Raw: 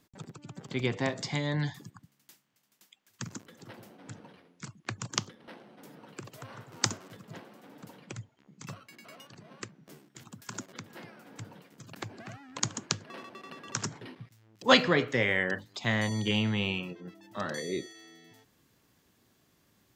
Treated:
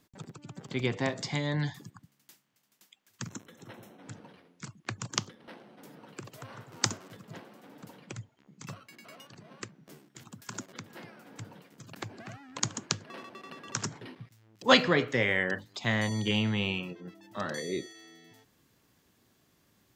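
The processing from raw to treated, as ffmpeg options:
ffmpeg -i in.wav -filter_complex "[0:a]asettb=1/sr,asplit=3[link_01][link_02][link_03];[link_01]atrim=end=3.294[link_04];[link_02]atrim=start=3.29:end=4.03,asetpts=PTS-STARTPTS,afade=type=in:duration=0.004:curve=qsin,afade=type=out:start_time=0.736:duration=0.004:curve=qsin,asuperstop=centerf=4700:order=12:qfactor=5.9[link_05];[link_03]atrim=start=4.026[link_06];[link_04][link_05]acrossfade=duration=0.004:curve1=hsin:curve2=qsin[link_07];[link_07][link_06]acrossfade=duration=0.004:curve1=qsin:curve2=hsin" out.wav

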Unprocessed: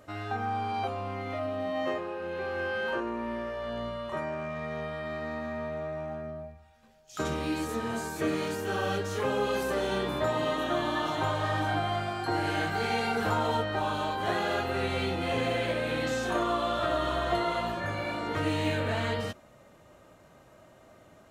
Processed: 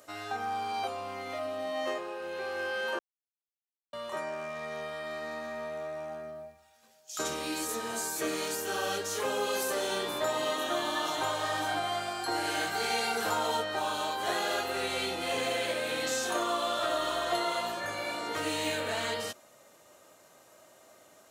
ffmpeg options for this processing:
ffmpeg -i in.wav -filter_complex "[0:a]asplit=3[link_01][link_02][link_03];[link_01]atrim=end=2.99,asetpts=PTS-STARTPTS,afade=type=out:start_time=2.986:duration=0.004:curve=hsin[link_04];[link_02]atrim=start=2.99:end=3.93,asetpts=PTS-STARTPTS,volume=0[link_05];[link_03]atrim=start=3.93,asetpts=PTS-STARTPTS,afade=type=in:duration=0.004:curve=hsin[link_06];[link_04][link_05][link_06]concat=n=3:v=0:a=1,highpass=78,bass=frequency=250:gain=-13,treble=frequency=4000:gain=12,volume=-1.5dB" out.wav

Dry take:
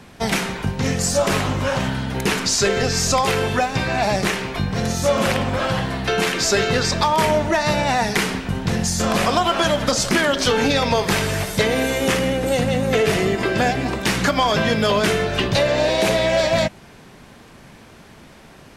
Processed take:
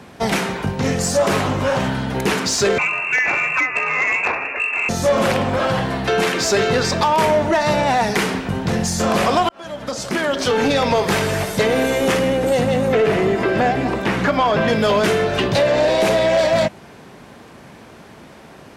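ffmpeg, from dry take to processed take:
ffmpeg -i in.wav -filter_complex "[0:a]asettb=1/sr,asplit=3[link_01][link_02][link_03];[link_01]atrim=end=2.784[link_04];[link_02]atrim=start=2.78:end=4.89,asetpts=PTS-STARTPTS,afade=type=in:duration=0.004:curve=qsin,afade=type=out:start_time=2.106:duration=0.004:curve=qsin,lowpass=frequency=2400:width_type=q:width=0.5098,lowpass=frequency=2400:width_type=q:width=0.6013,lowpass=frequency=2400:width_type=q:width=0.9,lowpass=frequency=2400:width_type=q:width=2.563,afreqshift=-2800[link_05];[link_03]atrim=start=4.886[link_06];[link_04][link_05]acrossfade=duration=0.004:curve1=hsin:curve2=qsin[link_07];[link_07][link_06]acrossfade=duration=0.004:curve1=qsin:curve2=hsin,asettb=1/sr,asplit=3[link_08][link_09][link_10];[link_08]atrim=end=12.884[link_11];[link_09]atrim=start=12.88:end=14.68,asetpts=PTS-STARTPTS,afade=type=in:duration=0.004:curve=qsin,afade=type=out:start_time=1.796:duration=0.004:curve=qsin,acrossover=split=3000[link_12][link_13];[link_13]acompressor=threshold=-39dB:ratio=4:attack=1:release=60[link_14];[link_12][link_14]amix=inputs=2:normalize=0[link_15];[link_10]atrim=start=14.676[link_16];[link_11][link_15]acrossfade=duration=0.004:curve1=hsin:curve2=qsin[link_17];[link_17][link_16]acrossfade=duration=0.004:curve1=qsin:curve2=hsin,asplit=2[link_18][link_19];[link_18]atrim=end=9.49,asetpts=PTS-STARTPTS,afade=type=out:start_time=9.486:duration=0.004:curve=hsin[link_20];[link_19]atrim=start=9.49,asetpts=PTS-STARTPTS,afade=type=in:duration=1.31[link_21];[link_20][link_21]concat=n=2:v=0:a=1,highpass=55,equalizer=frequency=560:width=0.37:gain=5.5,acontrast=85,volume=-7.5dB" out.wav

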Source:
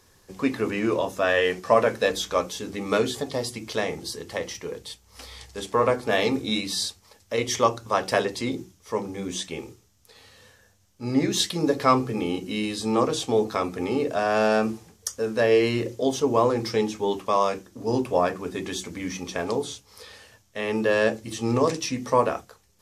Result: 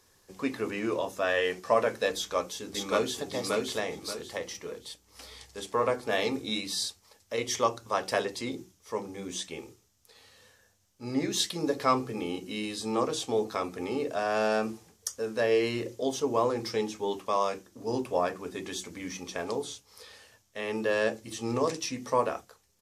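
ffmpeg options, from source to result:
ffmpeg -i in.wav -filter_complex "[0:a]asplit=2[link_01][link_02];[link_02]afade=type=in:start_time=2.16:duration=0.01,afade=type=out:start_time=3.21:duration=0.01,aecho=0:1:580|1160|1740|2320:0.841395|0.252419|0.0757256|0.0227177[link_03];[link_01][link_03]amix=inputs=2:normalize=0,bass=frequency=250:gain=-4,treble=frequency=4000:gain=2,volume=-5.5dB" out.wav

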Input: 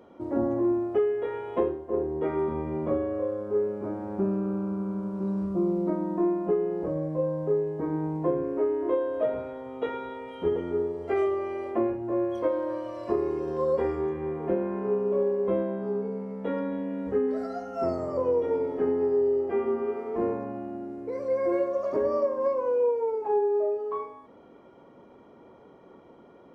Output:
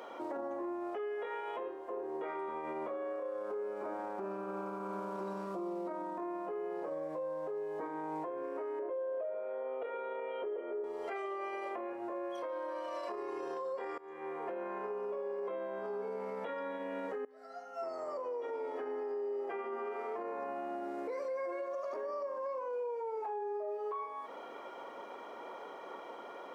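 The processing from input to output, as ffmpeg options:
ffmpeg -i in.wav -filter_complex "[0:a]asettb=1/sr,asplit=3[link_01][link_02][link_03];[link_01]atrim=end=8.794[link_04];[link_02]atrim=start=8.79:end=10.84,asetpts=PTS-STARTPTS,afade=type=in:duration=0.004:curve=qsin,afade=type=out:start_time=2.046:duration=0.004:curve=qsin,highpass=370,equalizer=frequency=390:width_type=q:width=4:gain=6,equalizer=frequency=560:width_type=q:width=4:gain=9,equalizer=frequency=870:width_type=q:width=4:gain=-8,equalizer=frequency=1300:width_type=q:width=4:gain=-5,equalizer=frequency=1900:width_type=q:width=4:gain=-7,lowpass=frequency=2300:width=0.5412,lowpass=frequency=2300:width=1.3066[link_05];[link_03]atrim=start=10.836[link_06];[link_04][link_05]acrossfade=duration=0.004:curve1=hsin:curve2=qsin[link_07];[link_07][link_06]acrossfade=duration=0.004:curve1=qsin:curve2=hsin,asplit=3[link_08][link_09][link_10];[link_08]atrim=end=13.98,asetpts=PTS-STARTPTS,afade=type=out:start_time=13.976:duration=0.004:curve=hsin:silence=0.0707946[link_11];[link_09]atrim=start=13.98:end=17.25,asetpts=PTS-STARTPTS,afade=type=in:duration=1.5:silence=0.0707946,afade=type=out:start_time=3.266:duration=0.004:curve=hsin:silence=0.0707946[link_12];[link_10]atrim=start=17.25,asetpts=PTS-STARTPTS,afade=type=in:duration=1.98:curve=qua:silence=0.0707946[link_13];[link_11][link_12][link_13]concat=n=3:v=0:a=1,highpass=720,acompressor=threshold=-48dB:ratio=6,alimiter=level_in=20.5dB:limit=-24dB:level=0:latency=1:release=27,volume=-20.5dB,volume=12.5dB" out.wav

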